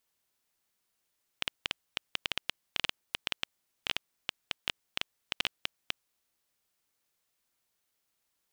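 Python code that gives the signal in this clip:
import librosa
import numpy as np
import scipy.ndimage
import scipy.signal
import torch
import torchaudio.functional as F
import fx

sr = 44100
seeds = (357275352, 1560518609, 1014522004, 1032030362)

y = fx.geiger_clicks(sr, seeds[0], length_s=4.74, per_s=7.5, level_db=-11.0)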